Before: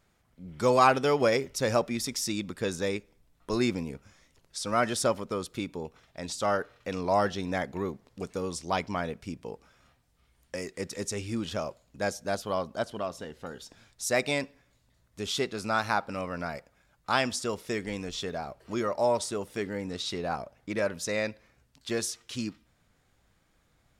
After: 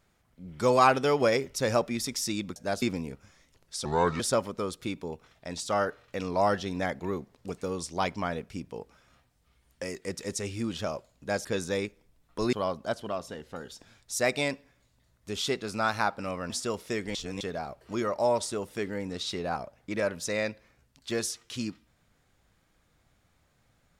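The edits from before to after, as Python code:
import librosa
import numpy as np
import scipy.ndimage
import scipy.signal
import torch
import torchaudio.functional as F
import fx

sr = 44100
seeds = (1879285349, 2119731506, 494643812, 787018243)

y = fx.edit(x, sr, fx.swap(start_s=2.56, length_s=1.08, other_s=12.17, other_length_s=0.26),
    fx.speed_span(start_s=4.67, length_s=0.25, speed=0.72),
    fx.cut(start_s=16.4, length_s=0.89),
    fx.reverse_span(start_s=17.94, length_s=0.26), tone=tone)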